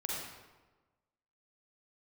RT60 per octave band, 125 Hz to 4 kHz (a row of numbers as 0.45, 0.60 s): 1.4, 1.3, 1.3, 1.2, 1.0, 0.80 s